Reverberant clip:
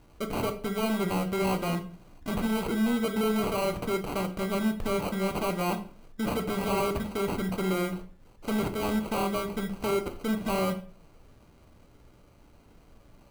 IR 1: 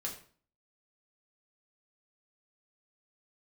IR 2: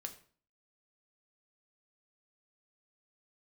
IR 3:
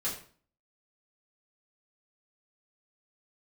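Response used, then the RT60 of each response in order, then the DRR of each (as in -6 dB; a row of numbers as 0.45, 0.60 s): 2; 0.45, 0.45, 0.45 s; -2.5, 5.0, -8.5 dB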